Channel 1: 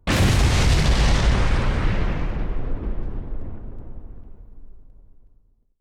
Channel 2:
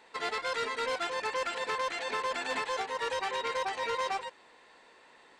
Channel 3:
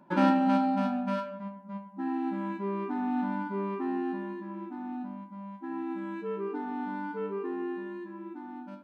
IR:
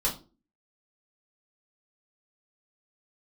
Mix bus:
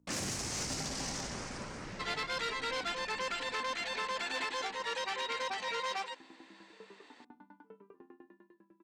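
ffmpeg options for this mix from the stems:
-filter_complex "[0:a]aexciter=amount=5.5:drive=7.4:freq=5.1k,aeval=exprs='val(0)+0.00708*(sin(2*PI*60*n/s)+sin(2*PI*2*60*n/s)/2+sin(2*PI*3*60*n/s)/3+sin(2*PI*4*60*n/s)/4+sin(2*PI*5*60*n/s)/5)':c=same,volume=-16.5dB[a];[1:a]highshelf=f=2k:g=10,adelay=1850,volume=-5.5dB[b];[2:a]aeval=exprs='val(0)*pow(10,-32*if(lt(mod(10*n/s,1),2*abs(10)/1000),1-mod(10*n/s,1)/(2*abs(10)/1000),(mod(10*n/s,1)-2*abs(10)/1000)/(1-2*abs(10)/1000))/20)':c=same,adelay=500,volume=-15dB,asplit=2[c][d];[d]volume=-17.5dB[e];[3:a]atrim=start_sample=2205[f];[e][f]afir=irnorm=-1:irlink=0[g];[a][b][c][g]amix=inputs=4:normalize=0,acrossover=split=150 7700:gain=0.141 1 0.1[h][i][j];[h][i][j]amix=inputs=3:normalize=0,asoftclip=type=tanh:threshold=-27dB"

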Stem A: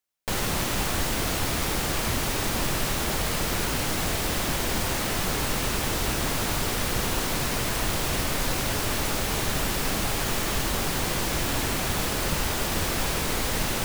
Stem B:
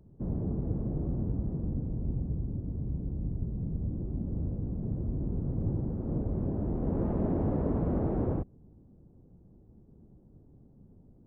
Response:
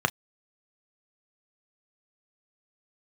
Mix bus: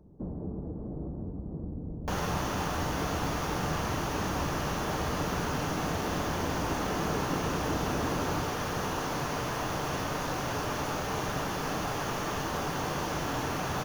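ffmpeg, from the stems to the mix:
-filter_complex "[0:a]adelay=1800,volume=-11.5dB,asplit=2[a][b];[b]volume=-5dB[c];[1:a]acompressor=threshold=-34dB:ratio=6,volume=-0.5dB,asplit=2[d][e];[e]volume=-11.5dB[f];[2:a]atrim=start_sample=2205[g];[c][f]amix=inputs=2:normalize=0[h];[h][g]afir=irnorm=-1:irlink=0[i];[a][d][i]amix=inputs=3:normalize=0"

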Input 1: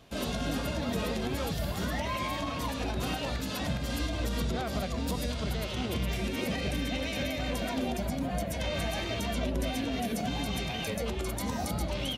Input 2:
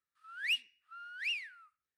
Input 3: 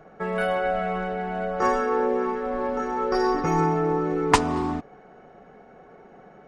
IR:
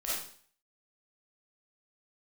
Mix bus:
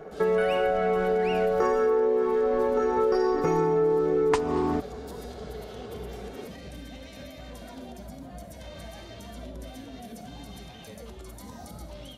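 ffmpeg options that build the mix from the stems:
-filter_complex "[0:a]equalizer=f=2.5k:t=o:w=0.59:g=-6.5,volume=-11.5dB,asplit=2[a][b];[b]volume=-12.5dB[c];[1:a]tiltshelf=f=970:g=-7.5,volume=-9dB,asplit=2[d][e];[e]volume=-10.5dB[f];[2:a]equalizer=f=430:w=3.5:g=11,volume=2.5dB[g];[3:a]atrim=start_sample=2205[h];[c][f]amix=inputs=2:normalize=0[i];[i][h]afir=irnorm=-1:irlink=0[j];[a][d][g][j]amix=inputs=4:normalize=0,acompressor=threshold=-21dB:ratio=6"

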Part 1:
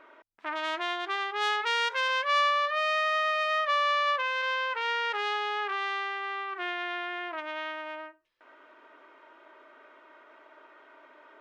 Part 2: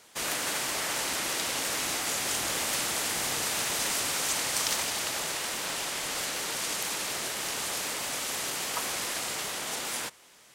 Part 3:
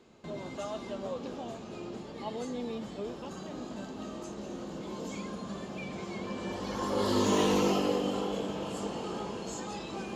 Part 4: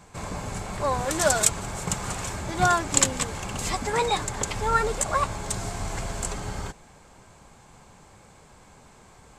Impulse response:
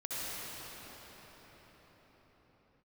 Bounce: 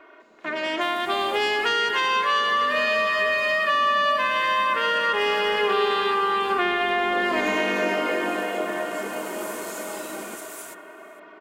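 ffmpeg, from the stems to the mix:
-filter_complex "[0:a]aecho=1:1:2.8:0.8,dynaudnorm=f=120:g=21:m=11.5dB,volume=1dB,asplit=2[a][b];[b]volume=-7.5dB[c];[1:a]aexciter=amount=2.8:drive=7:freq=6.8k,adelay=650,volume=-13.5dB,afade=t=in:st=8.93:d=0.61:silence=0.334965[d];[2:a]highpass=f=210:w=0.5412,highpass=f=210:w=1.3066,adelay=200,volume=-0.5dB,asplit=2[e][f];[f]volume=-21dB[g];[3:a]acompressor=threshold=-32dB:ratio=6,adelay=900,volume=-19dB[h];[4:a]atrim=start_sample=2205[i];[c][g]amix=inputs=2:normalize=0[j];[j][i]afir=irnorm=-1:irlink=0[k];[a][d][e][h][k]amix=inputs=5:normalize=0,equalizer=f=520:t=o:w=0.59:g=3,acrossover=split=300[l][m];[m]acompressor=threshold=-21dB:ratio=5[n];[l][n]amix=inputs=2:normalize=0"

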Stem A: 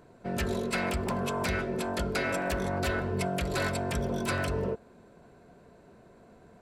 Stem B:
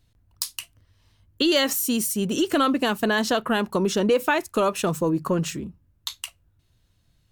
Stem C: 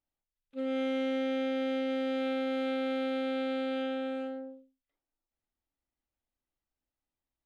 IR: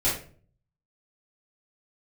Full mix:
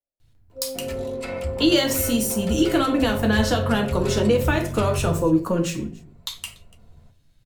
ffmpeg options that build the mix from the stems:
-filter_complex "[0:a]bandreject=f=1.6k:w=6.4,asubboost=boost=11:cutoff=95,adelay=500,volume=-1dB,asplit=2[a][b];[b]volume=-20.5dB[c];[1:a]adelay=200,volume=2.5dB,asplit=3[d][e][f];[e]volume=-14dB[g];[f]volume=-22.5dB[h];[2:a]lowpass=f=580:t=q:w=4.9,volume=-5.5dB[i];[3:a]atrim=start_sample=2205[j];[c][g]amix=inputs=2:normalize=0[k];[k][j]afir=irnorm=-1:irlink=0[l];[h]aecho=0:1:289:1[m];[a][d][i][l][m]amix=inputs=5:normalize=0,acrossover=split=410|3000[n][o][p];[o]acompressor=threshold=-17dB:ratio=6[q];[n][q][p]amix=inputs=3:normalize=0,flanger=delay=7.5:depth=2.2:regen=-46:speed=0.98:shape=sinusoidal"

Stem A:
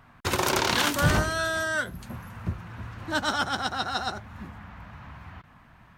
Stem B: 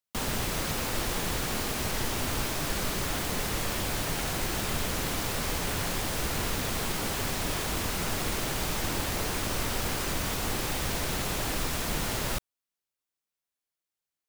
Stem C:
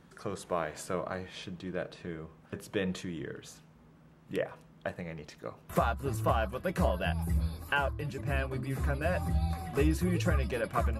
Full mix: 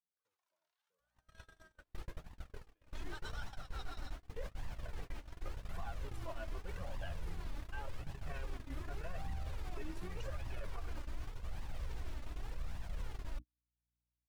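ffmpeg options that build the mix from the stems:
-filter_complex "[0:a]highpass=f=600:w=0.5412,highpass=f=600:w=1.3066,volume=-9dB[a];[1:a]lowpass=f=2.3k:p=1,asubboost=boost=5:cutoff=83,aeval=exprs='val(0)+0.0224*(sin(2*PI*60*n/s)+sin(2*PI*2*60*n/s)/2+sin(2*PI*3*60*n/s)/3+sin(2*PI*4*60*n/s)/4+sin(2*PI*5*60*n/s)/5)':c=same,adelay=1000,volume=-11.5dB[b];[2:a]lowpass=f=2.9k:p=1,asplit=2[c][d];[d]adelay=2.2,afreqshift=1.2[e];[c][e]amix=inputs=2:normalize=1,volume=2dB[f];[a][f]amix=inputs=2:normalize=0,lowshelf=f=430:g=-7.5,alimiter=level_in=6dB:limit=-24dB:level=0:latency=1:release=304,volume=-6dB,volume=0dB[g];[b][g]amix=inputs=2:normalize=0,flanger=delay=1:depth=2.5:regen=25:speed=0.86:shape=triangular,agate=range=-44dB:threshold=-35dB:ratio=16:detection=peak,alimiter=level_in=9dB:limit=-24dB:level=0:latency=1:release=55,volume=-9dB"

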